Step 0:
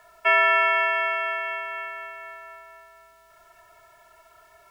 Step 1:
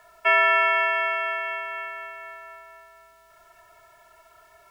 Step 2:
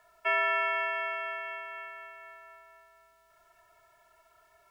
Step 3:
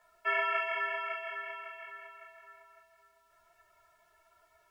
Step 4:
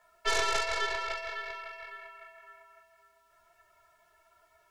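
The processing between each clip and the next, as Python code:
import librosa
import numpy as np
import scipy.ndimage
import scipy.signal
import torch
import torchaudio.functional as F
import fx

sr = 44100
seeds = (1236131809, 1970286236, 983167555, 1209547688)

y1 = x
y2 = fx.dynamic_eq(y1, sr, hz=210.0, q=0.94, threshold_db=-47.0, ratio=4.0, max_db=8)
y2 = F.gain(torch.from_numpy(y2), -9.0).numpy()
y3 = fx.ensemble(y2, sr)
y4 = fx.tracing_dist(y3, sr, depth_ms=0.24)
y4 = F.gain(torch.from_numpy(y4), 1.5).numpy()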